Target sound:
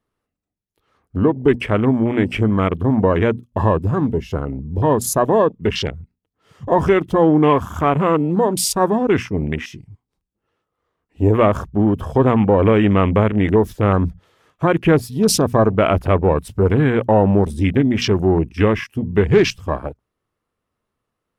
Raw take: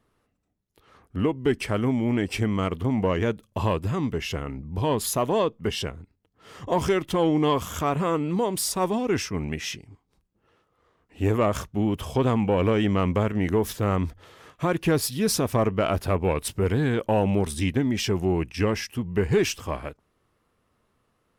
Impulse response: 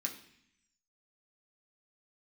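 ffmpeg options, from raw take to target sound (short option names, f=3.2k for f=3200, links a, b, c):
-af "bandreject=f=60:t=h:w=6,bandreject=f=120:t=h:w=6,bandreject=f=180:t=h:w=6,bandreject=f=240:t=h:w=6,afwtdn=0.02,volume=8.5dB"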